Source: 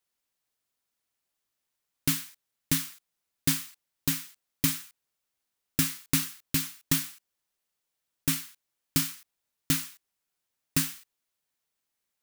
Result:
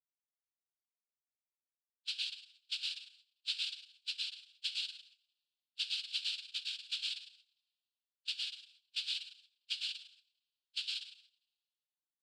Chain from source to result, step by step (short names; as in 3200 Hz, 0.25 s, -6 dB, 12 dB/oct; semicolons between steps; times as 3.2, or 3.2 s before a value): per-bin expansion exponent 3; gate -57 dBFS, range -21 dB; resonant low shelf 280 Hz +7 dB, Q 3; notches 60/120/180 Hz; limiter -20 dBFS, peak gain reduction 11 dB; loudest bins only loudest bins 2; resonator 140 Hz, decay 1.8 s, mix 40%; inverted band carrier 3800 Hz; plate-style reverb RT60 0.6 s, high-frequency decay 0.85×, pre-delay 95 ms, DRR -3.5 dB; noise vocoder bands 8; gain +1 dB